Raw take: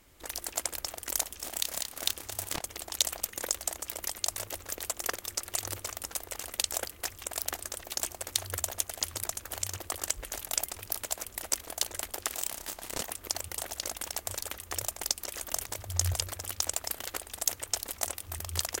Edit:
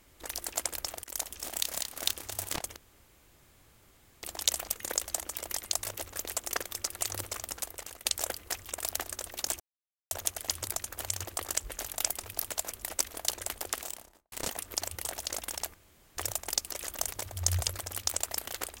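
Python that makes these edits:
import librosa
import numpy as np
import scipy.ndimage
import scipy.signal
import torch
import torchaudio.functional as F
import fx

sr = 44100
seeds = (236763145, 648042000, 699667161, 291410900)

y = fx.studio_fade_out(x, sr, start_s=12.21, length_s=0.64)
y = fx.edit(y, sr, fx.fade_in_from(start_s=1.04, length_s=0.29, floor_db=-15.0),
    fx.insert_room_tone(at_s=2.76, length_s=1.47),
    fx.fade_out_to(start_s=6.06, length_s=0.52, floor_db=-9.0),
    fx.silence(start_s=8.13, length_s=0.51),
    fx.room_tone_fill(start_s=14.27, length_s=0.43), tone=tone)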